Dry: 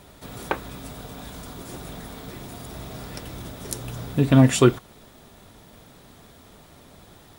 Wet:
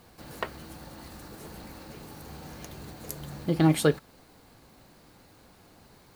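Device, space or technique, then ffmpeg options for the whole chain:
nightcore: -af "asetrate=52920,aresample=44100,volume=-6.5dB"

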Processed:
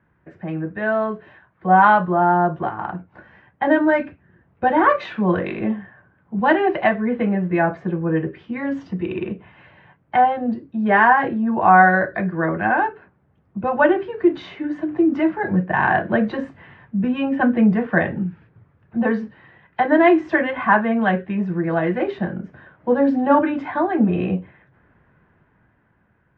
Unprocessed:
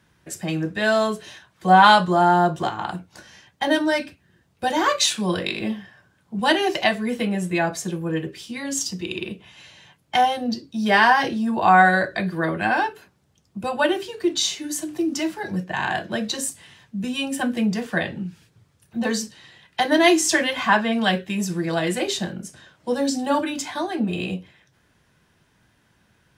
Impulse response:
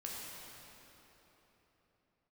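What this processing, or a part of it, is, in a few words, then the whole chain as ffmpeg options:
action camera in a waterproof case: -af "lowpass=f=1.9k:w=0.5412,lowpass=f=1.9k:w=1.3066,dynaudnorm=f=280:g=11:m=11.5dB,volume=-1dB" -ar 44100 -c:a aac -b:a 64k

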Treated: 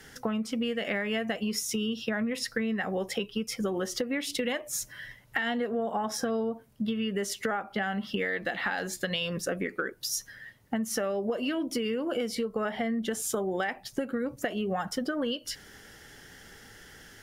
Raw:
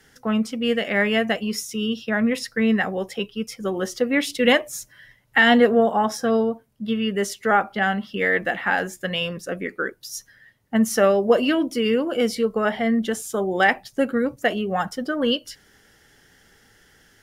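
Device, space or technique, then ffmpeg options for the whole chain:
serial compression, peaks first: -filter_complex "[0:a]asettb=1/sr,asplit=3[a][b][c];[a]atrim=end=8.284[d];[b]atrim=start=8.28:end=9.3,asetpts=PTS-STARTPTS,afade=t=in:d=0.004:c=qsin,afade=t=out:st=1.016:d=0.004:c=qsin,equalizer=f=4.2k:t=o:w=0.47:g=13[e];[c]atrim=start=9.296[f];[d][e]acrossfade=d=0.004:c1=hsin:c2=qsin[g];[g][f]acrossfade=d=0.004:c1=qsin:c2=hsin,acompressor=threshold=-28dB:ratio=6,acompressor=threshold=-34dB:ratio=2.5,volume=5dB"

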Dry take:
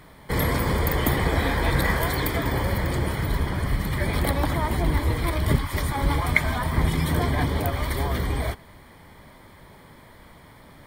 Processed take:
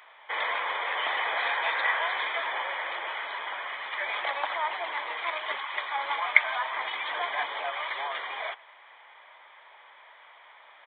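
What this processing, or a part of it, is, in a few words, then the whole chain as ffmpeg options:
musical greeting card: -af "aresample=8000,aresample=44100,highpass=f=710:w=0.5412,highpass=f=710:w=1.3066,equalizer=f=2.6k:t=o:w=0.44:g=4.5"

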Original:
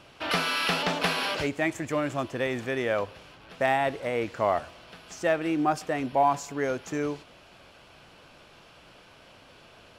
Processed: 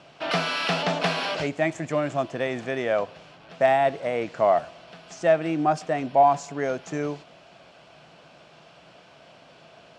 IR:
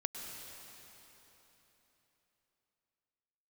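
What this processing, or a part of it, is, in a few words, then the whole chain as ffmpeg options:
car door speaker: -af "highpass=80,equalizer=f=92:t=q:w=4:g=-9,equalizer=f=160:t=q:w=4:g=7,equalizer=f=670:t=q:w=4:g=8,lowpass=f=8.3k:w=0.5412,lowpass=f=8.3k:w=1.3066"

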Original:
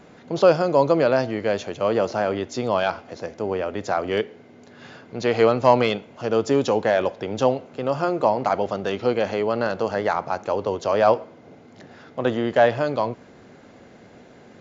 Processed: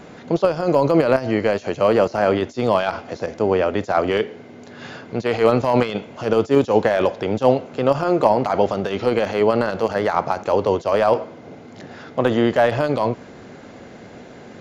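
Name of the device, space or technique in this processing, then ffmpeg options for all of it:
de-esser from a sidechain: -filter_complex "[0:a]asettb=1/sr,asplit=3[a][b][c];[a]atrim=end=0.634[d];[b]atrim=start=0.63:end=2.29,asetpts=PTS-STARTPTS,afade=t=in:d=0.004:c=qsin,afade=t=out:st=1.656:d=0.004:c=qsin,bandreject=f=3.5k:w=9.3[e];[c]atrim=start=2.286[f];[d][e]acrossfade=d=0.004:c1=hsin:c2=qsin[g];[g][f]acrossfade=d=0.004:c1=qsin:c2=hsin,asplit=2[h][i];[i]highpass=f=5.3k:w=0.5412,highpass=f=5.3k:w=1.3066,apad=whole_len=644025[j];[h][j]sidechaincompress=threshold=-52dB:ratio=16:attack=1.3:release=35,volume=7.5dB"

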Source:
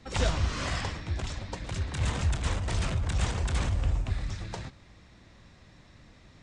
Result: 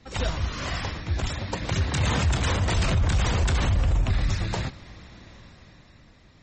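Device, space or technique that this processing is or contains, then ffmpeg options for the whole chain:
low-bitrate web radio: -filter_complex "[0:a]asplit=3[a][b][c];[a]afade=t=out:st=1.28:d=0.02[d];[b]highpass=67,afade=t=in:st=1.28:d=0.02,afade=t=out:st=2.73:d=0.02[e];[c]afade=t=in:st=2.73:d=0.02[f];[d][e][f]amix=inputs=3:normalize=0,dynaudnorm=f=280:g=9:m=11dB,alimiter=limit=-15dB:level=0:latency=1:release=22" -ar 48000 -c:a libmp3lame -b:a 32k

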